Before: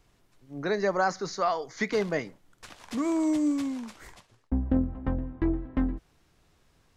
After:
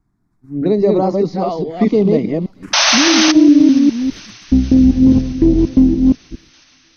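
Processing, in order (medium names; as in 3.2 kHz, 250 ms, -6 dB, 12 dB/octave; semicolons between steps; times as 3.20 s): chunks repeated in reverse 205 ms, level -2 dB; peaking EQ 270 Hz +13 dB 2 oct; gate -48 dBFS, range -12 dB; touch-sensitive phaser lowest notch 500 Hz, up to 1.6 kHz, full sweep at -17.5 dBFS; tone controls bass +5 dB, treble -6 dB; painted sound noise, 2.73–3.32 s, 540–6400 Hz -13 dBFS; peak limiter -6 dBFS, peak gain reduction 7.5 dB; feedback echo behind a high-pass 475 ms, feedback 76%, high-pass 1.5 kHz, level -21.5 dB; trim +4 dB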